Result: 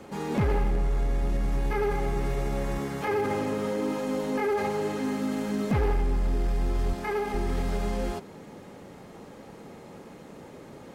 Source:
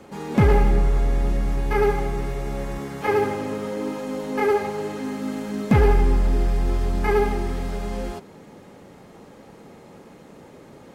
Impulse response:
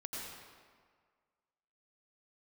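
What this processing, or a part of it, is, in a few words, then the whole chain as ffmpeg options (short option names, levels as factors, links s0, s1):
clipper into limiter: -filter_complex "[0:a]asoftclip=type=hard:threshold=0.237,alimiter=limit=0.1:level=0:latency=1:release=16,asettb=1/sr,asplit=3[s0][s1][s2];[s0]atrim=end=6.934[s3];[s1]atrim=start=6.93:end=7.34,asetpts=PTS-STARTPTS,afade=t=in:d=0.004:c=qsin,afade=t=out:st=0.406:d=0.004:c=qsin,highpass=f=280:p=1[s4];[s2]atrim=start=7.336[s5];[s3][s4]acrossfade=d=0.004:c1=hsin:c2=qsin[s6];[s6][s5]acrossfade=d=0.004:c1=qsin:c2=hsin"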